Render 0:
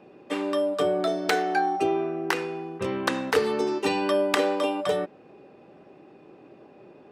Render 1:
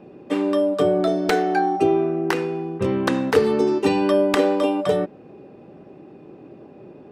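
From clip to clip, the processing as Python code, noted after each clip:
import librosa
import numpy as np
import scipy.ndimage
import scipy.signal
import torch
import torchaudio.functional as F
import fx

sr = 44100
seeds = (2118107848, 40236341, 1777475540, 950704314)

y = fx.low_shelf(x, sr, hz=470.0, db=11.5)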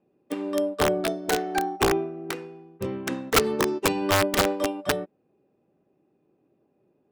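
y = (np.mod(10.0 ** (10.5 / 20.0) * x + 1.0, 2.0) - 1.0) / 10.0 ** (10.5 / 20.0)
y = fx.upward_expand(y, sr, threshold_db=-31.0, expansion=2.5)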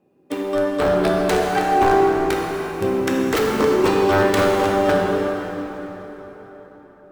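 y = fx.fold_sine(x, sr, drive_db=8, ceiling_db=-10.5)
y = fx.rev_plate(y, sr, seeds[0], rt60_s=4.5, hf_ratio=0.65, predelay_ms=0, drr_db=-2.5)
y = y * 10.0 ** (-6.0 / 20.0)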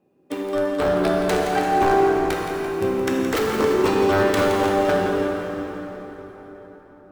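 y = fx.echo_split(x, sr, split_hz=390.0, low_ms=401, high_ms=170, feedback_pct=52, wet_db=-10)
y = y * 10.0 ** (-2.5 / 20.0)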